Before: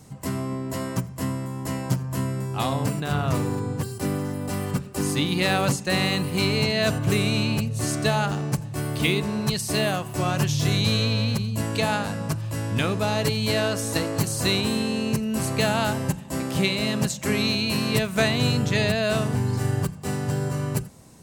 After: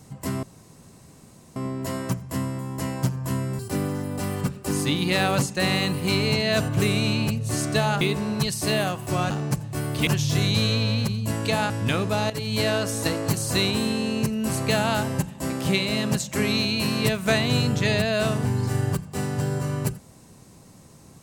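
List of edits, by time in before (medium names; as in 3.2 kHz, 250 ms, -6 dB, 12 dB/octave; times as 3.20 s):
0.43 s: insert room tone 1.13 s
2.46–3.89 s: delete
8.31–9.08 s: move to 10.37 s
12.00–12.60 s: delete
13.20–13.47 s: fade in, from -13.5 dB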